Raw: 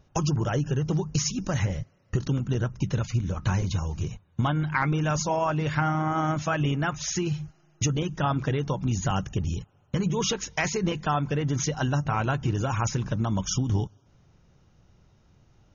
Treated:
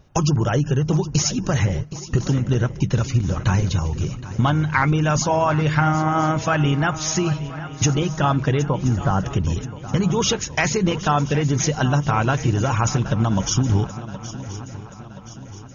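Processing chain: 8.61–9.2 polynomial smoothing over 41 samples; on a send: swung echo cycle 1.026 s, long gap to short 3:1, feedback 49%, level -15 dB; on the sum: gain +6.5 dB

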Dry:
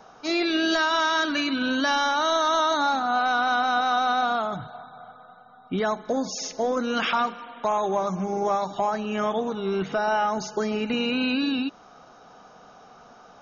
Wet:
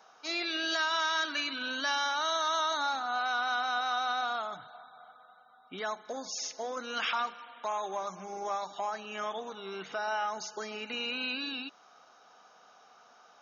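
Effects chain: HPF 1300 Hz 6 dB/oct; gain -4 dB

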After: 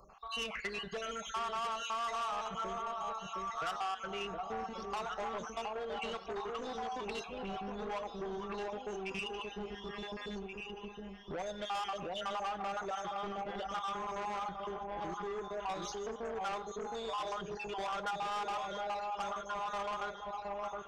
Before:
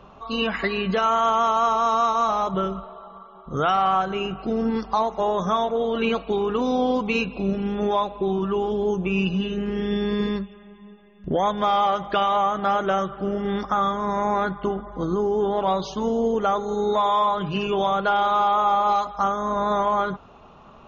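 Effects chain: random spectral dropouts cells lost 43%; echo with dull and thin repeats by turns 0.715 s, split 900 Hz, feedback 58%, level -3.5 dB; soft clip -21.5 dBFS, distortion -12 dB; tone controls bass -9 dB, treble +1 dB; on a send at -14.5 dB: reverb, pre-delay 3 ms; on the sum: compressor, threshold -25 dBFS, peak gain reduction 3.5 dB; graphic EQ 125/250/500/1000/2000/4000 Hz -5/-11/-8/-7/-4/-7 dB

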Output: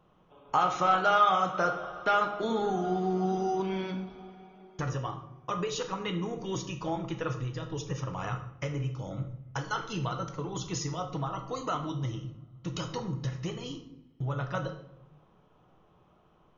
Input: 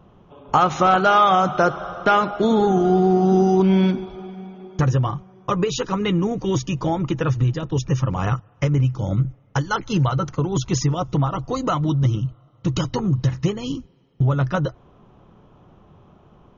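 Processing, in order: low shelf 350 Hz -9.5 dB; shoebox room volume 170 m³, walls mixed, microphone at 0.57 m; gain -9 dB

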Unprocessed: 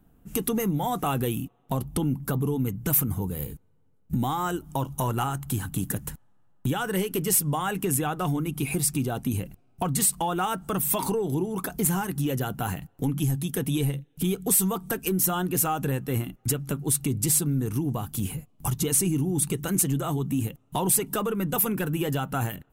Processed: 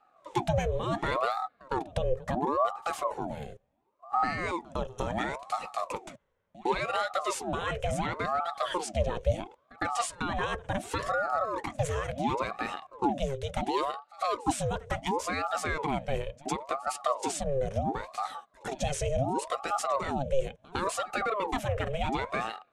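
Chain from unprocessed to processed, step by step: speaker cabinet 190–6400 Hz, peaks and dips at 250 Hz +8 dB, 970 Hz -8 dB, 1900 Hz +5 dB, 3100 Hz +3 dB, 4700 Hz -7 dB; pre-echo 0.107 s -22 dB; ring modulator with a swept carrier 640 Hz, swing 60%, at 0.71 Hz

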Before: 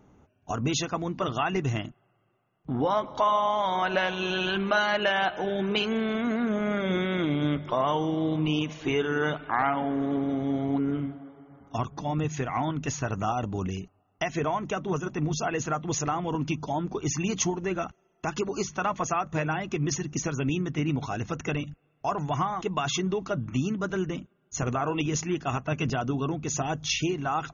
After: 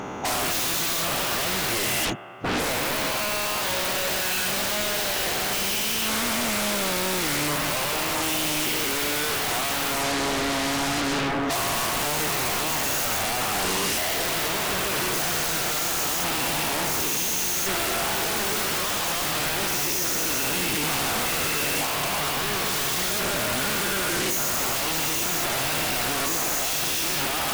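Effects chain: spectral dilation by 0.48 s; overdrive pedal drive 33 dB, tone 5300 Hz, clips at -4 dBFS; wavefolder -20.5 dBFS

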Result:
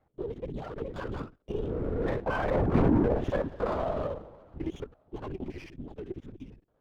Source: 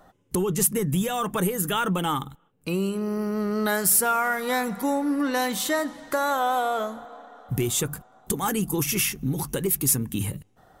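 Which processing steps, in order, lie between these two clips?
local time reversal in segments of 68 ms; Doppler pass-by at 4.43, 36 m/s, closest 9.1 m; treble ducked by the level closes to 780 Hz, closed at -27.5 dBFS; bell 380 Hz +13 dB 1.5 oct; in parallel at +1 dB: compressor, threshold -35 dBFS, peak gain reduction 20 dB; on the sum: soft clip -19 dBFS, distortion -9 dB; time stretch by phase-locked vocoder 0.63×; painted sound rise, 2.57–2.78, 210–2700 Hz -41 dBFS; LPC vocoder at 8 kHz whisper; running maximum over 5 samples

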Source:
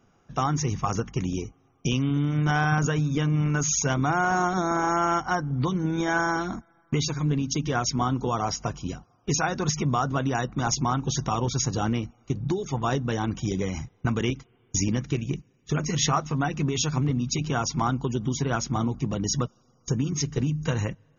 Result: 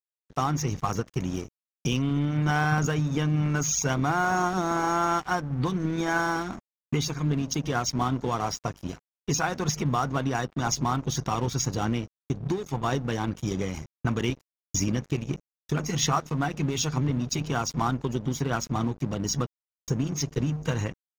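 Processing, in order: crossover distortion -39 dBFS

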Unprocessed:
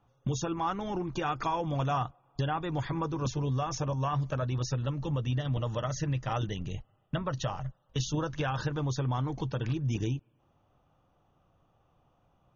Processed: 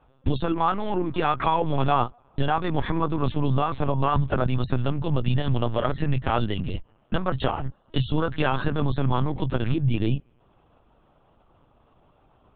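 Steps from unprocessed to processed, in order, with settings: LPC vocoder at 8 kHz pitch kept; gain +8.5 dB

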